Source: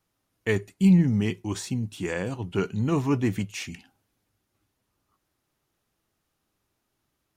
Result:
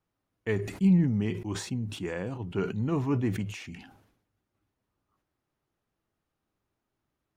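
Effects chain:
high-shelf EQ 3,400 Hz −12 dB
level that may fall only so fast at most 74 dB per second
level −4 dB

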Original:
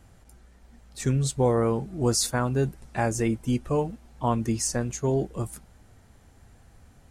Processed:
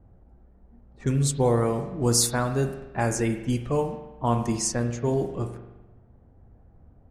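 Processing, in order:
low-pass that shuts in the quiet parts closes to 620 Hz, open at −21 dBFS
high-shelf EQ 7,900 Hz +8.5 dB
convolution reverb RT60 1.0 s, pre-delay 42 ms, DRR 7 dB

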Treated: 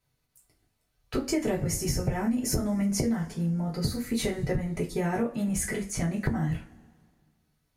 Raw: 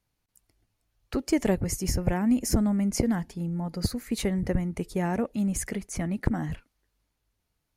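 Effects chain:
coupled-rooms reverb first 0.26 s, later 1.9 s, from −27 dB, DRR −4.5 dB
downward compressor, threshold −21 dBFS, peak gain reduction 8 dB
level −2.5 dB

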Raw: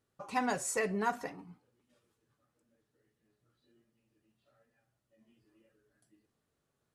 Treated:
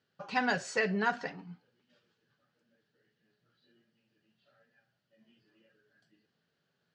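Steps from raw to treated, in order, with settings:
loudspeaker in its box 140–5,700 Hz, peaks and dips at 170 Hz +7 dB, 310 Hz −5 dB, 1,100 Hz −5 dB, 1,600 Hz +9 dB, 3,000 Hz +7 dB, 4,500 Hz +7 dB
level +1.5 dB

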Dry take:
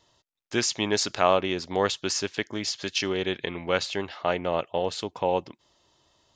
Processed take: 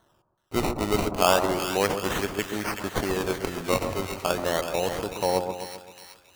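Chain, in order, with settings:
sample-and-hold swept by an LFO 18×, swing 100% 0.33 Hz
echo with a time of its own for lows and highs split 1,300 Hz, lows 132 ms, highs 376 ms, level −7 dB

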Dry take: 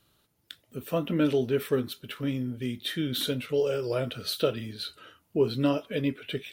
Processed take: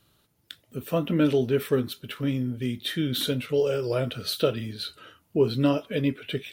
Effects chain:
parametric band 120 Hz +2.5 dB 1.8 octaves
level +2 dB

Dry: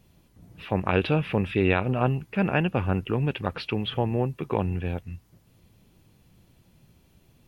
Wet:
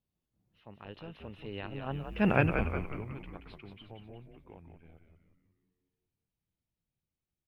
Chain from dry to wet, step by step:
source passing by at 0:02.32, 25 m/s, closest 2.3 metres
echo with shifted repeats 180 ms, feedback 49%, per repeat −89 Hz, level −6 dB

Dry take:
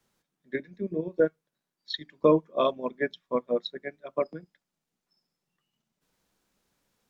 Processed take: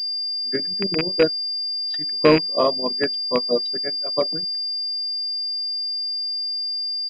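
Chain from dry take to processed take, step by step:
loose part that buzzes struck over −30 dBFS, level −13 dBFS
pitch-shifted copies added −4 semitones −18 dB
switching amplifier with a slow clock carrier 4,800 Hz
level +5.5 dB

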